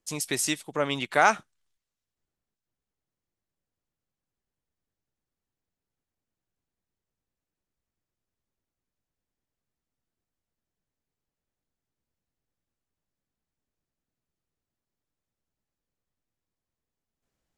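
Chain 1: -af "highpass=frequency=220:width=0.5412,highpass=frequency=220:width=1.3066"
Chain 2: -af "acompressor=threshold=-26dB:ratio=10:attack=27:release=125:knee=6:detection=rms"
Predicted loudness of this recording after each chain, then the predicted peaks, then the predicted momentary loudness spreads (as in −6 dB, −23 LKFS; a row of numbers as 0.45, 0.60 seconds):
−26.0, −31.0 LKFS; −7.0, −12.0 dBFS; 8, 4 LU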